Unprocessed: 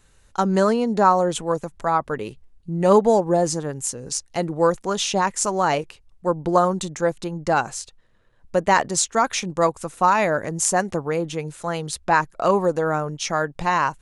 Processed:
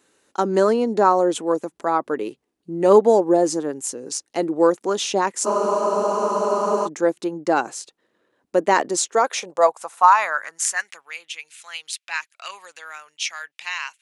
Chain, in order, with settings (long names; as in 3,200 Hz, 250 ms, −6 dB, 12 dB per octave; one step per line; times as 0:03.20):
high-pass filter sweep 310 Hz → 2,500 Hz, 0:08.88–0:11.07
frozen spectrum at 0:05.49, 1.38 s
level −1.5 dB